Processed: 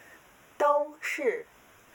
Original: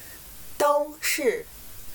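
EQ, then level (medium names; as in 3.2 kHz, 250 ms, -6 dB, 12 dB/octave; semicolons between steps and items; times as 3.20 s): boxcar filter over 10 samples; high-pass 560 Hz 6 dB/octave; 0.0 dB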